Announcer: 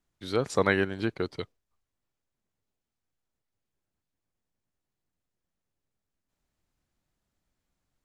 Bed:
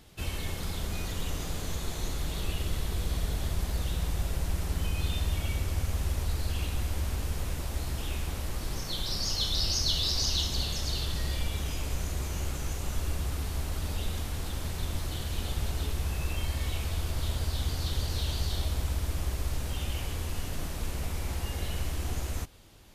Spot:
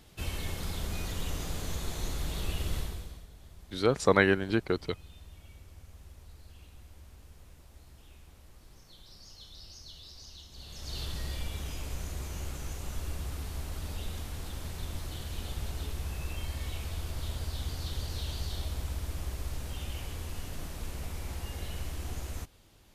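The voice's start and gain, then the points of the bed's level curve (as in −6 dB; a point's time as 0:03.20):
3.50 s, +1.5 dB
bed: 0:02.79 −1.5 dB
0:03.28 −21 dB
0:10.48 −21 dB
0:11.00 −5 dB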